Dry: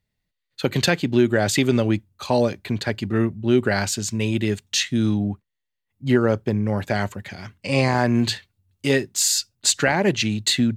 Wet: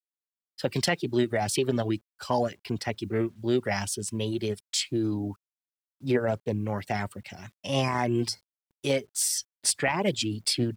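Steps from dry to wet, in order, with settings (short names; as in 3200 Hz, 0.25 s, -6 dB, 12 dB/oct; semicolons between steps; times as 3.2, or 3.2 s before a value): reverb removal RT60 0.5 s; formant shift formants +3 st; spectral gain 8.28–8.52, 1600–4100 Hz -17 dB; bit-crush 10-bit; gain -6 dB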